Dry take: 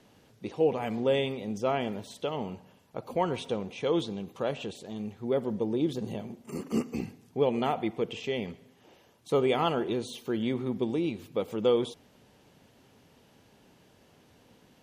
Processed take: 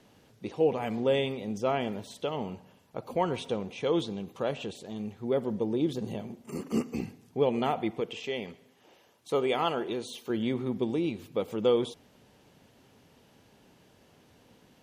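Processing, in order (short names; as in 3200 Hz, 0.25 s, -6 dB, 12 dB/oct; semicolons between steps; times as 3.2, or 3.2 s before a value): 8–10.3 low shelf 230 Hz -9.5 dB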